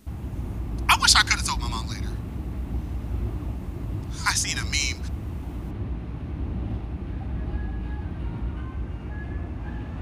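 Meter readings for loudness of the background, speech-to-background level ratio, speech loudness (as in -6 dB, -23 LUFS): -32.5 LUFS, 10.5 dB, -22.0 LUFS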